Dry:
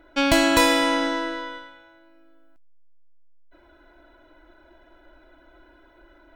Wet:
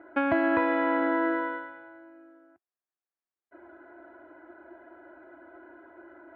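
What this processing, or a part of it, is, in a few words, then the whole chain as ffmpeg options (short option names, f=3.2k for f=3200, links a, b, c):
bass amplifier: -af "acompressor=threshold=-25dB:ratio=5,highpass=f=90:w=0.5412,highpass=f=90:w=1.3066,equalizer=f=150:t=q:w=4:g=-9,equalizer=f=350:t=q:w=4:g=8,equalizer=f=720:t=q:w=4:g=7,equalizer=f=1.2k:t=q:w=4:g=4,equalizer=f=1.7k:t=q:w=4:g=5,lowpass=f=2k:w=0.5412,lowpass=f=2k:w=1.3066"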